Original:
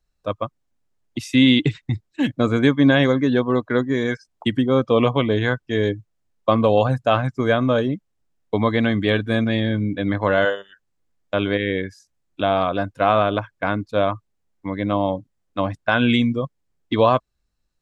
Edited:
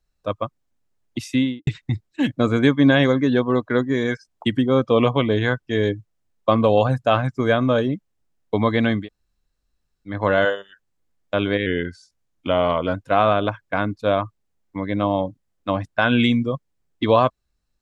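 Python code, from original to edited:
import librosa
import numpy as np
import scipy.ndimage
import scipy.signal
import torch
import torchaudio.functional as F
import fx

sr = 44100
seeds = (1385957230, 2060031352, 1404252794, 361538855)

y = fx.studio_fade_out(x, sr, start_s=1.2, length_s=0.47)
y = fx.edit(y, sr, fx.room_tone_fill(start_s=9.01, length_s=1.12, crossfade_s=0.16),
    fx.speed_span(start_s=11.66, length_s=1.18, speed=0.92), tone=tone)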